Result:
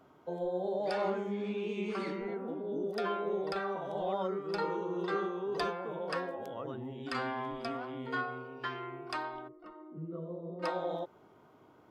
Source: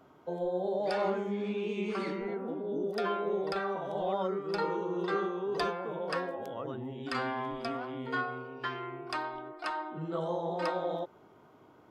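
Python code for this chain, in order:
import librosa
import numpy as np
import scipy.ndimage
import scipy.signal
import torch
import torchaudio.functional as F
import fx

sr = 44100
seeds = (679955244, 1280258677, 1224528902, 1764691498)

y = fx.moving_average(x, sr, points=54, at=(9.47, 10.62), fade=0.02)
y = y * librosa.db_to_amplitude(-2.0)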